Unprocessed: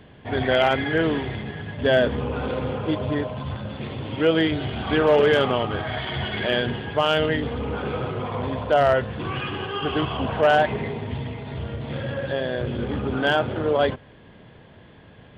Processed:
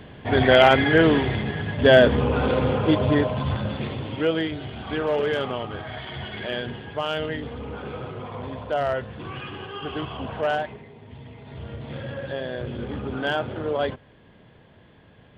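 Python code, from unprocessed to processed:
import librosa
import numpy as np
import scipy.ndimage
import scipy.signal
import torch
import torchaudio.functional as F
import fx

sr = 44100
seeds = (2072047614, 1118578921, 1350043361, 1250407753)

y = fx.gain(x, sr, db=fx.line((3.67, 5.0), (4.51, -6.5), (10.53, -6.5), (10.86, -17.5), (11.72, -4.5)))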